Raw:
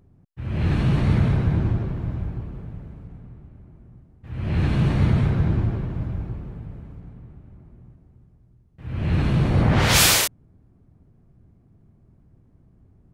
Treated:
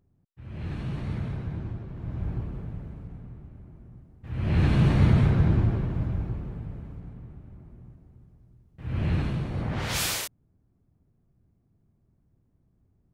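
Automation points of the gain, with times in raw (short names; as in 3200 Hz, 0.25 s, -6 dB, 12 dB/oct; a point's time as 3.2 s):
1.87 s -12.5 dB
2.32 s -0.5 dB
8.97 s -0.5 dB
9.47 s -12 dB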